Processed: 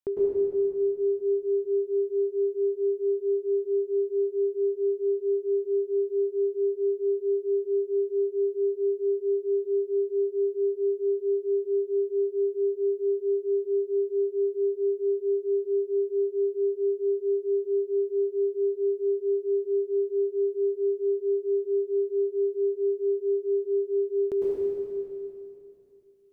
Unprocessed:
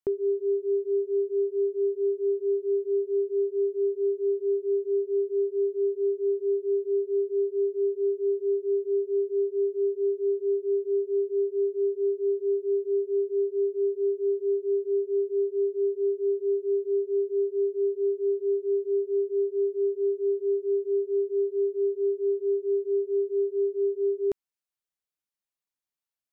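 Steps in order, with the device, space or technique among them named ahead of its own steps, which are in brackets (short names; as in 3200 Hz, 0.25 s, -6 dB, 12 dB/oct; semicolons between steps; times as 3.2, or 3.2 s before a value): stairwell (reverb RT60 2.7 s, pre-delay 98 ms, DRR -6 dB); gain -3 dB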